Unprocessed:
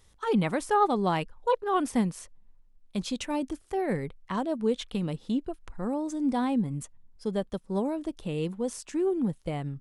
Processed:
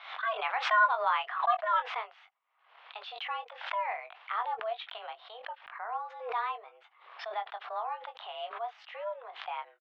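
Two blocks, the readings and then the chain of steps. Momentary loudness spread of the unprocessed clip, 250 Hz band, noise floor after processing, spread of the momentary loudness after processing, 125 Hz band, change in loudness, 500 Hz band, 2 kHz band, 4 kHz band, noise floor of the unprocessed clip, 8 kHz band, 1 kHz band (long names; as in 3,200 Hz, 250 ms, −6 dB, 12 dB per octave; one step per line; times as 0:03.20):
8 LU, below −40 dB, −67 dBFS, 17 LU, below −40 dB, −3.5 dB, −9.0 dB, +7.5 dB, +0.5 dB, −60 dBFS, below −20 dB, +1.0 dB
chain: double-tracking delay 21 ms −7.5 dB
single-sideband voice off tune +220 Hz 560–3,100 Hz
background raised ahead of every attack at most 84 dB per second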